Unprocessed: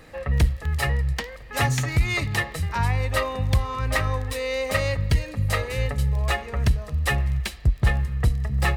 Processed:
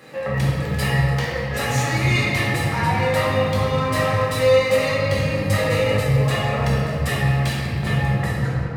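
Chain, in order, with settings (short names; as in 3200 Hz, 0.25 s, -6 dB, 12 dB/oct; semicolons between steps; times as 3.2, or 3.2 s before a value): tape stop at the end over 0.38 s; HPF 120 Hz 24 dB/oct; limiter -20 dBFS, peak gain reduction 9.5 dB; shoebox room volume 150 m³, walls hard, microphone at 1.1 m; gain +1 dB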